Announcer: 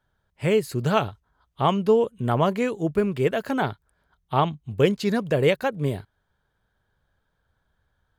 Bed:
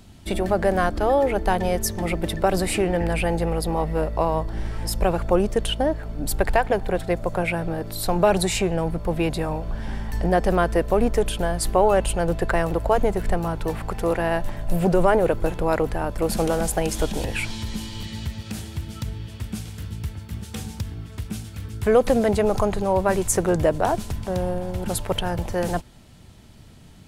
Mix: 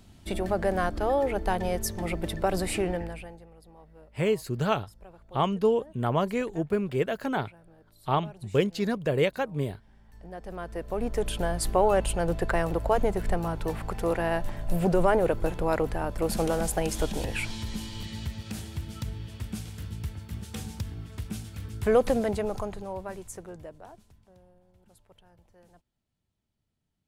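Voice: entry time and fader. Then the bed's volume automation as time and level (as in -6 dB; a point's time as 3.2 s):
3.75 s, -4.5 dB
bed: 2.9 s -6 dB
3.48 s -29 dB
9.93 s -29 dB
11.35 s -4.5 dB
22.01 s -4.5 dB
24.51 s -34 dB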